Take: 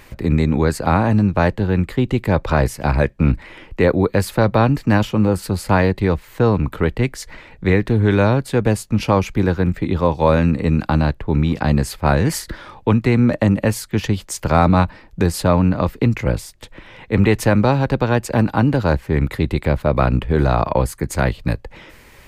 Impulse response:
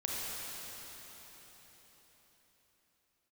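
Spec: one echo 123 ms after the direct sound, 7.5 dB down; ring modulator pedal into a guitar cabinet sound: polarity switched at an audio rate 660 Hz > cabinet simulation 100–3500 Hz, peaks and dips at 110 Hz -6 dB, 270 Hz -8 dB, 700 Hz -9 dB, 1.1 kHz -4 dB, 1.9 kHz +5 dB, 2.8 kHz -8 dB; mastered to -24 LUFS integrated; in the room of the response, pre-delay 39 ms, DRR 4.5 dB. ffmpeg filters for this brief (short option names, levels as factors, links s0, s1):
-filter_complex "[0:a]aecho=1:1:123:0.422,asplit=2[s0][s1];[1:a]atrim=start_sample=2205,adelay=39[s2];[s1][s2]afir=irnorm=-1:irlink=0,volume=0.335[s3];[s0][s3]amix=inputs=2:normalize=0,aeval=exprs='val(0)*sgn(sin(2*PI*660*n/s))':c=same,highpass=100,equalizer=f=110:t=q:w=4:g=-6,equalizer=f=270:t=q:w=4:g=-8,equalizer=f=700:t=q:w=4:g=-9,equalizer=f=1100:t=q:w=4:g=-4,equalizer=f=1900:t=q:w=4:g=5,equalizer=f=2800:t=q:w=4:g=-8,lowpass=f=3500:w=0.5412,lowpass=f=3500:w=1.3066,volume=0.473"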